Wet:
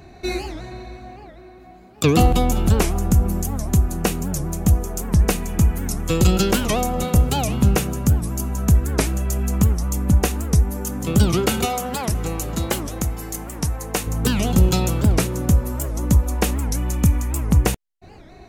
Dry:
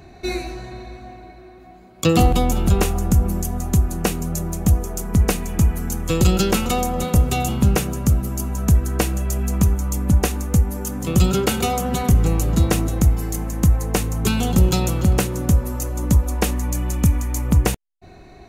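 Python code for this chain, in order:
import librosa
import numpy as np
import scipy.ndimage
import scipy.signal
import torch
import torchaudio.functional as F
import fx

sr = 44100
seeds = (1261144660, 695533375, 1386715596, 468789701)

y = fx.low_shelf(x, sr, hz=290.0, db=-10.0, at=(11.65, 14.07))
y = fx.record_warp(y, sr, rpm=78.0, depth_cents=250.0)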